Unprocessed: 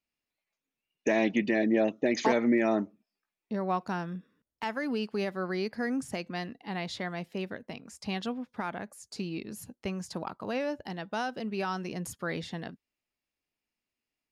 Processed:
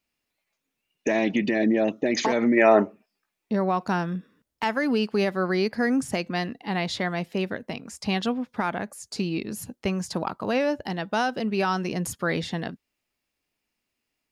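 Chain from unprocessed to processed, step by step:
brickwall limiter −22 dBFS, peak gain reduction 8.5 dB
gain on a spectral selection 0:02.57–0:03.06, 360–3,000 Hz +10 dB
level +8 dB

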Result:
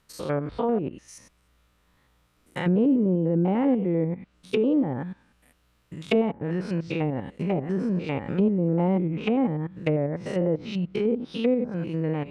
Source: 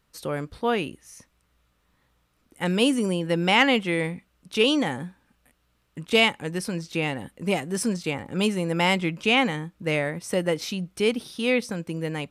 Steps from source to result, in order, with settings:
spectrum averaged block by block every 100 ms
treble cut that deepens with the level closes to 540 Hz, closed at −23 dBFS
level +4 dB

